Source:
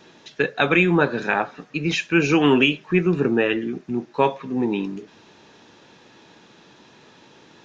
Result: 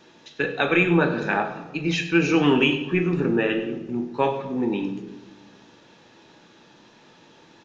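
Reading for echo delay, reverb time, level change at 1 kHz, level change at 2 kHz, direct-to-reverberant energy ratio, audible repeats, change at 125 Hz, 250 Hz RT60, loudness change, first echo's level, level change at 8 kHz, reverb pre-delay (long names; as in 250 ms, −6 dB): 98 ms, 1.1 s, −2.5 dB, −2.0 dB, 4.5 dB, 1, −1.0 dB, 1.7 s, −2.0 dB, −16.0 dB, can't be measured, 3 ms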